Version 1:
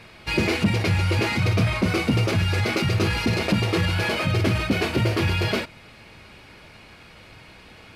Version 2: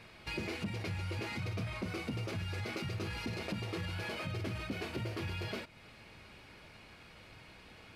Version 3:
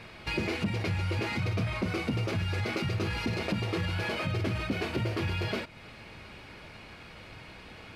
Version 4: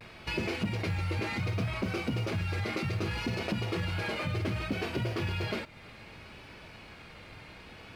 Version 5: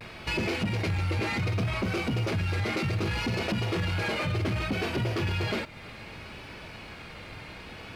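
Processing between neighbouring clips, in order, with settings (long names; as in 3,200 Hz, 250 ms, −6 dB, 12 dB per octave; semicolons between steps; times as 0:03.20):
downward compressor 2 to 1, threshold −34 dBFS, peak gain reduction 10.5 dB; level −8.5 dB
high-shelf EQ 5,900 Hz −6 dB; level +8 dB
log-companded quantiser 8 bits; pitch vibrato 0.65 Hz 52 cents; level −1.5 dB
soft clipping −28.5 dBFS, distortion −15 dB; level +6 dB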